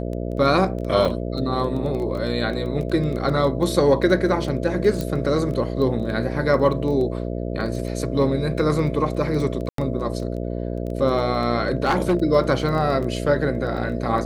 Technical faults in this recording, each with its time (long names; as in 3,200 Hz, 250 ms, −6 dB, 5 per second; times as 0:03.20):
mains buzz 60 Hz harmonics 11 −27 dBFS
surface crackle 11 per second −28 dBFS
0:01.05: drop-out 4.4 ms
0:05.01: click −13 dBFS
0:09.69–0:09.78: drop-out 93 ms
0:11.65–0:12.17: clipping −14 dBFS